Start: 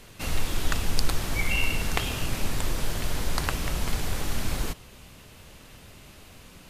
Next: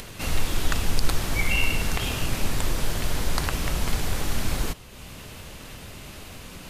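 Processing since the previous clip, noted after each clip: upward compressor, threshold -35 dBFS; maximiser +10.5 dB; gain -8 dB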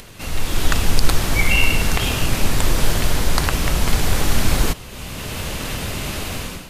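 AGC gain up to 16 dB; gain -1 dB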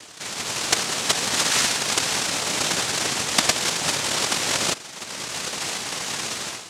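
resonant high-pass 1100 Hz, resonance Q 8.5; noise vocoder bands 2; gain -4.5 dB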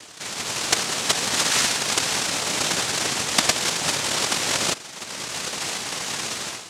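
nothing audible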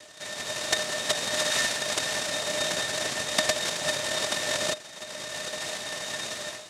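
small resonant body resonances 610/1800/3700 Hz, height 17 dB, ringing for 95 ms; gain -7.5 dB

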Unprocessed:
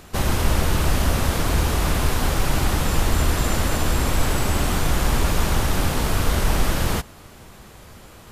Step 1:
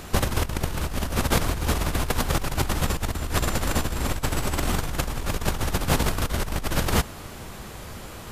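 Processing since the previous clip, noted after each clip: negative-ratio compressor -23 dBFS, ratio -0.5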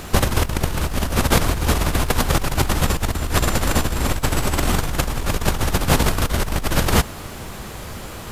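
bit-crush 10-bit; gain +5.5 dB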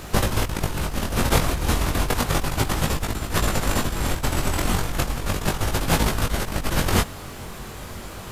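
chorus 0.33 Hz, delay 18.5 ms, depth 4.2 ms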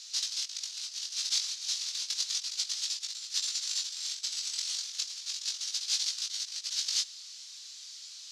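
Butterworth band-pass 5100 Hz, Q 2; gain +4 dB

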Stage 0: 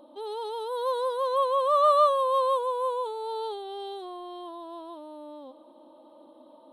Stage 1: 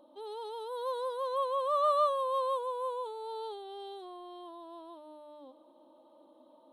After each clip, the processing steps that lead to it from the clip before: notches 60/120/180/240/300 Hz; gain -7 dB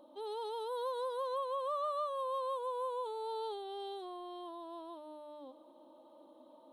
compressor 6:1, threshold -35 dBFS, peak gain reduction 11.5 dB; gain +1 dB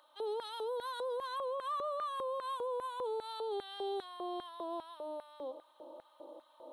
LFO high-pass square 2.5 Hz 440–1600 Hz; limiter -36 dBFS, peak gain reduction 11 dB; gain +4.5 dB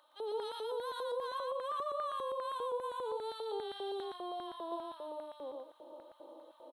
echo 0.117 s -3 dB; gain -2 dB

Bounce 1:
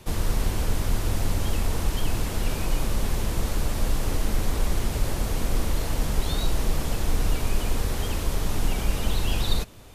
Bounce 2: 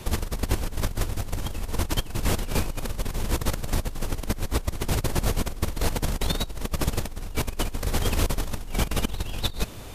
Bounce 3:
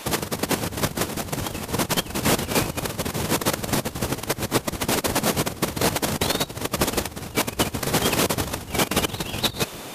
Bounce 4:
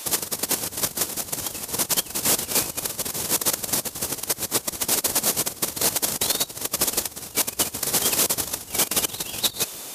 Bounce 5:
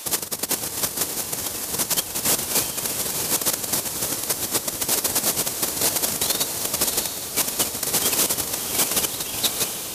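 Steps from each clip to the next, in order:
negative-ratio compressor -27 dBFS, ratio -0.5; gain +2 dB
spectral gate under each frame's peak -10 dB weak; gain +8 dB
tone controls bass -6 dB, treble +13 dB; gain -6 dB
diffused feedback echo 0.682 s, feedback 47%, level -6 dB

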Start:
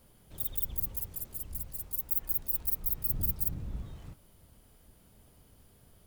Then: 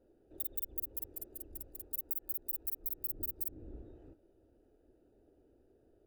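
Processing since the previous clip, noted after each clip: Wiener smoothing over 41 samples; resonant low shelf 240 Hz -11 dB, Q 3; compressor 10:1, threshold -33 dBFS, peak gain reduction 9.5 dB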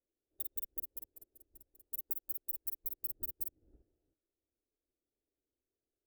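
upward expander 2.5:1, over -53 dBFS; gain +1 dB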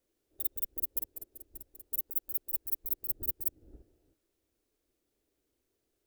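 negative-ratio compressor -40 dBFS, ratio -0.5; gain +9 dB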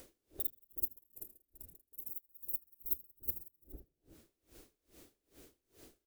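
upward compressor, threshold -35 dBFS; frequency-shifting echo 80 ms, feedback 52%, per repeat -100 Hz, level -11 dB; dB-linear tremolo 2.4 Hz, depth 31 dB; gain -1 dB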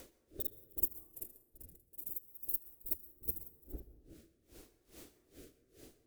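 rotary speaker horn 0.75 Hz; on a send at -15 dB: reverb RT60 1.1 s, pre-delay 0.107 s; on the sum: gain +5.5 dB

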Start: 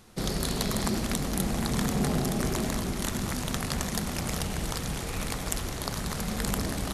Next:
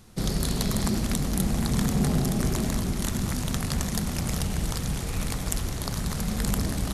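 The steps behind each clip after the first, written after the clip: tone controls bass +7 dB, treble +3 dB; gain -1.5 dB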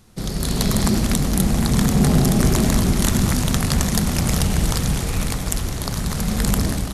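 AGC gain up to 11.5 dB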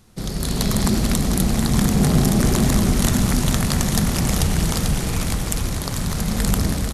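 feedback echo 0.442 s, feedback 58%, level -8 dB; gain -1 dB

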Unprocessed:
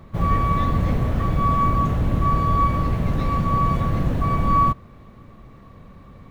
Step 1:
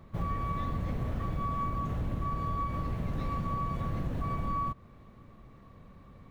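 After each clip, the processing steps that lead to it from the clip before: compressor, threshold -20 dBFS, peak gain reduction 7 dB; gain -8.5 dB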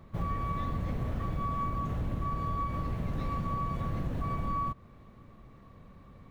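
nothing audible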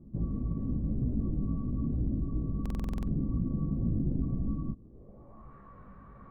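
chorus voices 4, 1 Hz, delay 17 ms, depth 3 ms; low-pass sweep 280 Hz -> 1400 Hz, 4.81–5.54; stuck buffer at 2.61, samples 2048, times 9; gain +3 dB

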